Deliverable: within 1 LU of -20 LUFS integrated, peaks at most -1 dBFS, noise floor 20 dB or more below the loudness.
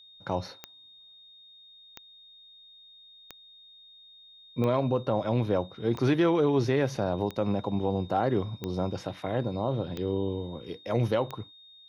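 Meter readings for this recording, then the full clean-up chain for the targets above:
clicks 9; steady tone 3700 Hz; tone level -51 dBFS; loudness -29.0 LUFS; peak -13.5 dBFS; loudness target -20.0 LUFS
-> de-click; notch 3700 Hz, Q 30; gain +9 dB

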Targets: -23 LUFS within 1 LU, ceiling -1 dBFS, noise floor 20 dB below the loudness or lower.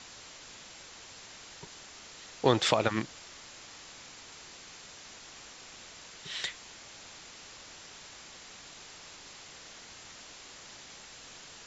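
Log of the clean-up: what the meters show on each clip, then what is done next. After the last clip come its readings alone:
noise floor -50 dBFS; noise floor target -58 dBFS; loudness -38.0 LUFS; peak -8.5 dBFS; loudness target -23.0 LUFS
-> noise print and reduce 8 dB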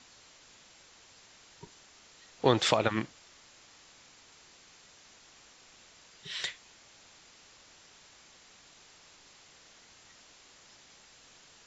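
noise floor -58 dBFS; loudness -30.0 LUFS; peak -8.5 dBFS; loudness target -23.0 LUFS
-> gain +7 dB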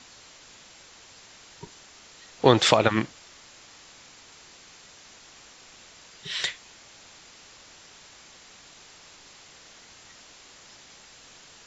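loudness -23.0 LUFS; peak -1.5 dBFS; noise floor -51 dBFS

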